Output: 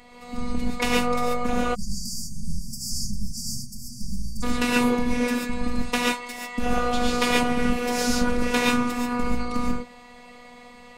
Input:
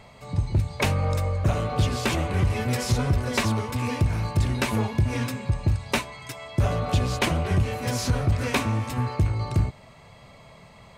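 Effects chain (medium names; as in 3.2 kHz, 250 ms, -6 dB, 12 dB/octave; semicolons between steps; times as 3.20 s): gated-style reverb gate 160 ms rising, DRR -4 dB; robot voice 243 Hz; spectral selection erased 1.75–4.43 s, 220–4400 Hz; trim +1 dB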